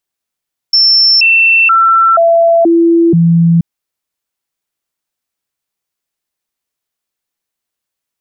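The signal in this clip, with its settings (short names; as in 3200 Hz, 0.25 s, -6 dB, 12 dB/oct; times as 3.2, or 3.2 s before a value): stepped sine 5370 Hz down, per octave 1, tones 6, 0.48 s, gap 0.00 s -4.5 dBFS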